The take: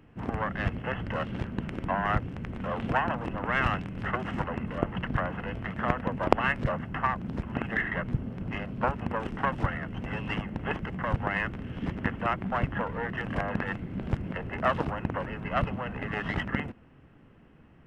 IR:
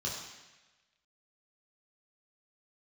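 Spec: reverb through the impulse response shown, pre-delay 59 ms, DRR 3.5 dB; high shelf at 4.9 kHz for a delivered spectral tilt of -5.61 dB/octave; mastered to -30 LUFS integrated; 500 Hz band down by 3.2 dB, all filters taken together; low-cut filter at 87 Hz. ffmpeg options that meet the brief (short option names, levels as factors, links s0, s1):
-filter_complex "[0:a]highpass=87,equalizer=f=500:t=o:g=-4,highshelf=f=4900:g=-7,asplit=2[s0][s1];[1:a]atrim=start_sample=2205,adelay=59[s2];[s1][s2]afir=irnorm=-1:irlink=0,volume=0.447[s3];[s0][s3]amix=inputs=2:normalize=0,volume=1.06"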